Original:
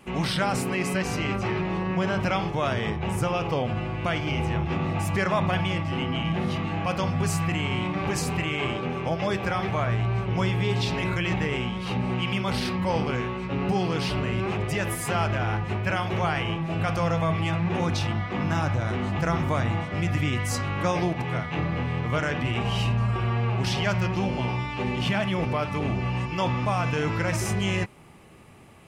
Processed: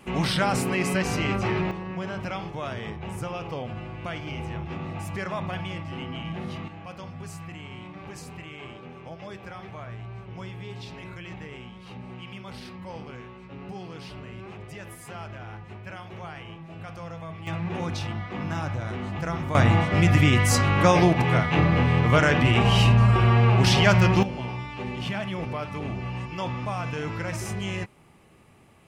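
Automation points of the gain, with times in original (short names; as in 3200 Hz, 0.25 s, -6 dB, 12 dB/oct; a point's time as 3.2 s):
+1.5 dB
from 1.71 s -7 dB
from 6.68 s -13.5 dB
from 17.47 s -4.5 dB
from 19.55 s +7 dB
from 24.23 s -5 dB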